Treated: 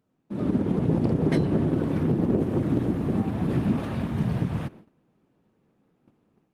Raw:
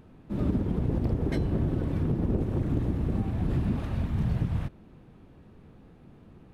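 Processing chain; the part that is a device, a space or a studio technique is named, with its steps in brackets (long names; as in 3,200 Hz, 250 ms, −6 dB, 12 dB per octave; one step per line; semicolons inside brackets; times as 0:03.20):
0:00.81–0:01.52: dynamic equaliser 160 Hz, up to +6 dB, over −45 dBFS, Q 5.7
video call (high-pass filter 160 Hz 12 dB per octave; automatic gain control gain up to 7.5 dB; noise gate −43 dBFS, range −18 dB; Opus 24 kbit/s 48,000 Hz)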